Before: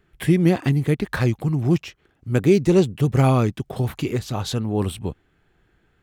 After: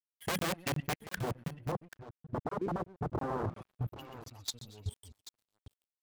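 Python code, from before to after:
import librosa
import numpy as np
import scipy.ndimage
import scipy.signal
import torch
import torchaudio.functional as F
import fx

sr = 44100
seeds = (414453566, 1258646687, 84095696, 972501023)

y = fx.bin_expand(x, sr, power=3.0)
y = fx.peak_eq(y, sr, hz=760.0, db=-10.5, octaves=1.6)
y = fx.echo_thinned(y, sr, ms=124, feedback_pct=44, hz=520.0, wet_db=-7.0)
y = (np.mod(10.0 ** (22.5 / 20.0) * y + 1.0, 2.0) - 1.0) / 10.0 ** (22.5 / 20.0)
y = scipy.signal.sosfilt(scipy.signal.butter(4, 46.0, 'highpass', fs=sr, output='sos'), y)
y = fx.level_steps(y, sr, step_db=16)
y = fx.lowpass(y, sr, hz=1200.0, slope=24, at=(1.19, 3.56))
y = y + 10.0 ** (-12.0 / 20.0) * np.pad(y, (int(785 * sr / 1000.0), 0))[:len(y)]
y = np.sign(y) * np.maximum(np.abs(y) - 10.0 ** (-53.5 / 20.0), 0.0)
y = fx.buffer_crackle(y, sr, first_s=0.39, period_s=0.35, block=1024, kind='zero')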